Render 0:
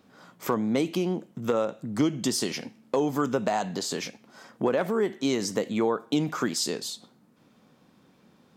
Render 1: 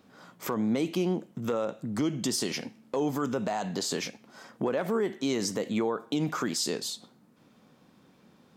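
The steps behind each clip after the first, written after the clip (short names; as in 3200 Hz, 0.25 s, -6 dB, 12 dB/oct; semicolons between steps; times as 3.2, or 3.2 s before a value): limiter -19.5 dBFS, peak gain reduction 6.5 dB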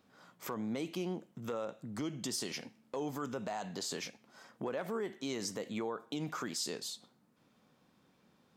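bell 250 Hz -3.5 dB 2.2 oct; gain -7 dB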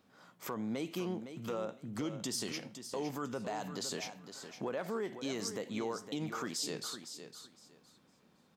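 feedback echo 0.51 s, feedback 20%, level -10 dB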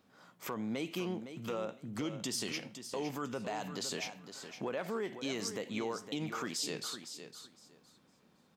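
dynamic EQ 2600 Hz, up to +5 dB, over -60 dBFS, Q 1.7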